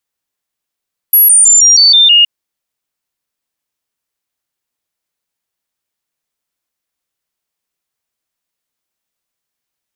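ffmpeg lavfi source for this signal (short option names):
-f lavfi -i "aevalsrc='0.708*clip(min(mod(t,0.16),0.16-mod(t,0.16))/0.005,0,1)*sin(2*PI*11400*pow(2,-floor(t/0.16)/3)*mod(t,0.16))':d=1.12:s=44100"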